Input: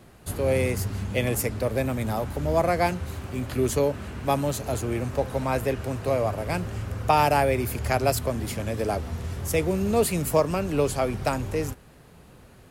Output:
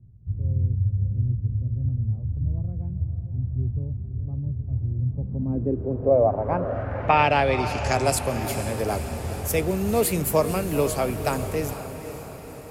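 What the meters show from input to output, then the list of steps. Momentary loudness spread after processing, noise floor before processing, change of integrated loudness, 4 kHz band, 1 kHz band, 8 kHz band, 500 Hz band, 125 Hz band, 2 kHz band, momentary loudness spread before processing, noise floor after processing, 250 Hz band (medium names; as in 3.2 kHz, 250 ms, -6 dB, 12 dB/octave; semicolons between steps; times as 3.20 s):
10 LU, -51 dBFS, +1.0 dB, 0.0 dB, +0.5 dB, +0.5 dB, -0.5 dB, +4.0 dB, +0.5 dB, 8 LU, -38 dBFS, -0.5 dB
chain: time-frequency box 0.92–1.81 s, 390–2400 Hz -7 dB; low-pass sweep 110 Hz -> 14 kHz, 4.94–8.44 s; echo that smears into a reverb 482 ms, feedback 59%, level -10.5 dB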